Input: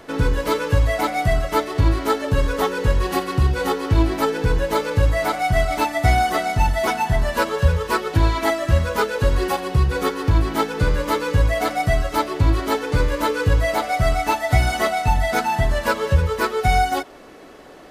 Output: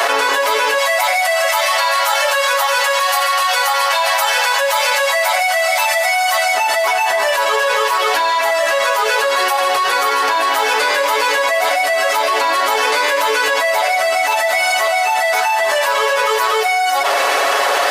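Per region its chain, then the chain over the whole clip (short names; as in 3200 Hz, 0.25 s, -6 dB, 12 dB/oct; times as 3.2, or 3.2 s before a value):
0.78–6.54 brick-wall FIR high-pass 470 Hz + tilt +1.5 dB/oct
whole clip: HPF 620 Hz 24 dB/oct; comb 7.2 ms, depth 72%; fast leveller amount 100%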